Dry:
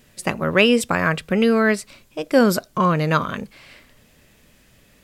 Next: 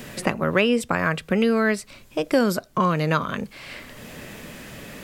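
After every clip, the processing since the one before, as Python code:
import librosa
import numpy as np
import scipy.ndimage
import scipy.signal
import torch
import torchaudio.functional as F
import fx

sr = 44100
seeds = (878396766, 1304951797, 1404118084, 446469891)

y = fx.band_squash(x, sr, depth_pct=70)
y = F.gain(torch.from_numpy(y), -3.0).numpy()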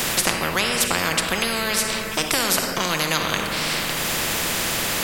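y = fx.room_shoebox(x, sr, seeds[0], volume_m3=1400.0, walls='mixed', distance_m=0.77)
y = fx.spectral_comp(y, sr, ratio=4.0)
y = F.gain(torch.from_numpy(y), 3.0).numpy()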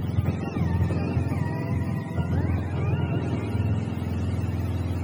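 y = fx.octave_mirror(x, sr, pivot_hz=660.0)
y = y + 10.0 ** (-6.0 / 20.0) * np.pad(y, (int(555 * sr / 1000.0), 0))[:len(y)]
y = F.gain(torch.from_numpy(y), -7.5).numpy()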